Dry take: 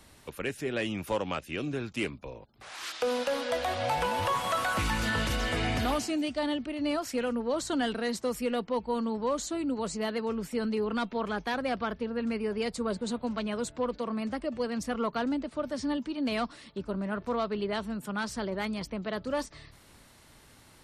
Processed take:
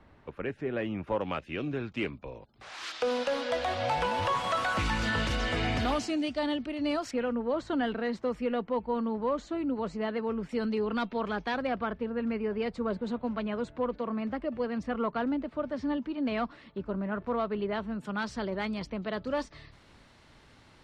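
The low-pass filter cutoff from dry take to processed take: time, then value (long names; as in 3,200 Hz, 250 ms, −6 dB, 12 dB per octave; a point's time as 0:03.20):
1,700 Hz
from 0:01.21 3,000 Hz
from 0:02.34 6,000 Hz
from 0:07.11 2,400 Hz
from 0:10.49 4,600 Hz
from 0:11.67 2,500 Hz
from 0:17.99 4,500 Hz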